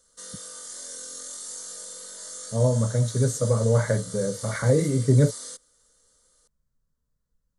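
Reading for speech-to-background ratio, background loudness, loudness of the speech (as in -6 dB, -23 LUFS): 13.0 dB, -36.5 LUFS, -23.5 LUFS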